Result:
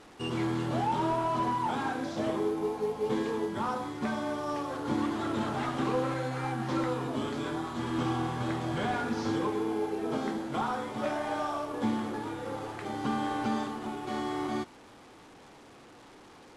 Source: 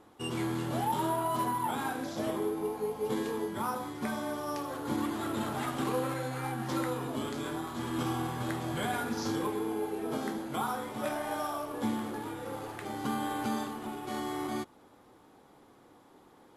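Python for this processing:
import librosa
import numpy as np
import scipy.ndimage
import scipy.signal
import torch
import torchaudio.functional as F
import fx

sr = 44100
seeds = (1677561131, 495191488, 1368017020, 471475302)

y = fx.delta_mod(x, sr, bps=64000, step_db=-49.0)
y = fx.air_absorb(y, sr, metres=52.0)
y = y * librosa.db_to_amplitude(2.5)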